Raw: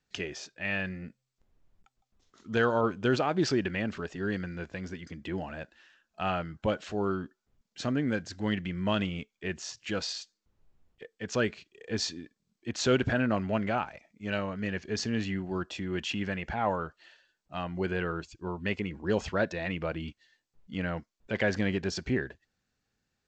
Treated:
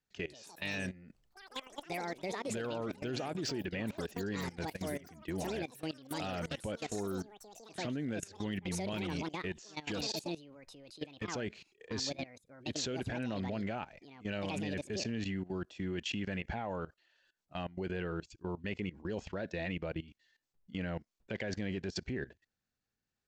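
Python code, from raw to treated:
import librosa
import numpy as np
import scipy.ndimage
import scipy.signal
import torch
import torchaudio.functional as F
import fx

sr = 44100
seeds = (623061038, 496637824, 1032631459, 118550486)

y = fx.echo_pitch(x, sr, ms=204, semitones=7, count=3, db_per_echo=-6.0)
y = fx.level_steps(y, sr, step_db=18)
y = fx.dynamic_eq(y, sr, hz=1200.0, q=1.5, threshold_db=-53.0, ratio=4.0, max_db=-7)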